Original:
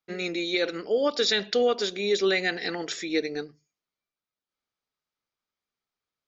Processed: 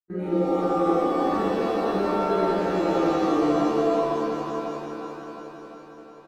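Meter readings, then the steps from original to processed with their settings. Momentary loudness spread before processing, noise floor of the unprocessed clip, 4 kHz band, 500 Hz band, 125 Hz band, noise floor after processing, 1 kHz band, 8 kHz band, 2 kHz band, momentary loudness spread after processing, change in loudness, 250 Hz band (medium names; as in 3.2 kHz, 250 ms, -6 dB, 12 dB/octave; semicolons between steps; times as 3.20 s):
9 LU, under -85 dBFS, -12.0 dB, +3.5 dB, +11.0 dB, -45 dBFS, +12.5 dB, no reading, -6.5 dB, 15 LU, +2.5 dB, +9.5 dB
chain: median filter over 9 samples; reverse; compression, threshold -30 dBFS, peak gain reduction 11 dB; reverse; bass shelf 120 Hz +6 dB; gate -42 dBFS, range -22 dB; doubling 27 ms -10.5 dB; echo whose repeats swap between lows and highs 178 ms, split 1.7 kHz, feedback 81%, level -5 dB; peak limiter -27 dBFS, peak gain reduction 8.5 dB; FFT filter 380 Hz 0 dB, 540 Hz -20 dB, 990 Hz -4 dB, 1.5 kHz -11 dB, 2.5 kHz -26 dB; pitch-shifted reverb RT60 2.4 s, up +7 st, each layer -2 dB, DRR -8 dB; trim +4 dB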